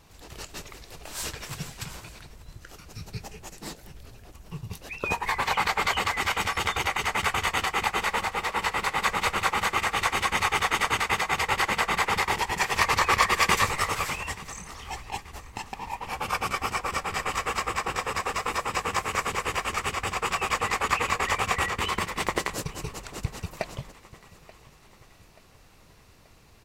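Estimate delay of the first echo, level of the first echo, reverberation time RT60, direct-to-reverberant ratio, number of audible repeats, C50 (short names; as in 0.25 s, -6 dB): 0.882 s, -20.5 dB, none, none, 3, none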